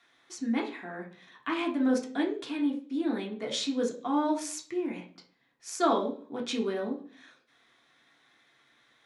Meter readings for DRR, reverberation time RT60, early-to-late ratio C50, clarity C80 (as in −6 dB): −0.5 dB, 0.45 s, 11.0 dB, 16.0 dB